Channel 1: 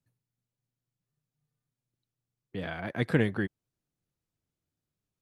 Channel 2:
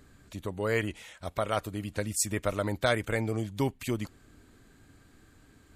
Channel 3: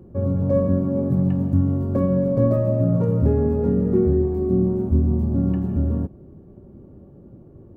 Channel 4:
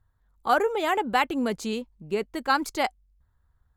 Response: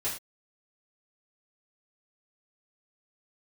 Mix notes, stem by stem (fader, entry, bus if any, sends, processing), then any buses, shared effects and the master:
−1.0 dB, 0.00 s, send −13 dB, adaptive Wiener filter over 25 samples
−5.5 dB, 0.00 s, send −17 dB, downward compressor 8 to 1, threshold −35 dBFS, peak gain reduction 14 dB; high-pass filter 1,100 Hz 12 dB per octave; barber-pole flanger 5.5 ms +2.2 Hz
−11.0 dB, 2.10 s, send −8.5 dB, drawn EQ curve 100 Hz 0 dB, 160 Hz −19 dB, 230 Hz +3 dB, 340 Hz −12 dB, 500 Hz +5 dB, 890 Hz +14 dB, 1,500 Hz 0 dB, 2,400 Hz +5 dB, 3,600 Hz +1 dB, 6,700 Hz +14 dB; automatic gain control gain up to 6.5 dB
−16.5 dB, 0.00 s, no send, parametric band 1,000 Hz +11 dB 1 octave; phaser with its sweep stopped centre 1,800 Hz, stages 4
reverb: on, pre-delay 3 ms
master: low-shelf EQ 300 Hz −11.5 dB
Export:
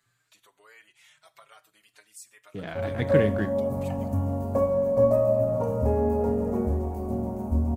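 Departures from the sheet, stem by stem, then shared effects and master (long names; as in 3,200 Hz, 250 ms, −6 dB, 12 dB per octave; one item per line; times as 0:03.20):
stem 3: entry 2.10 s → 2.60 s
stem 4: muted
master: missing low-shelf EQ 300 Hz −11.5 dB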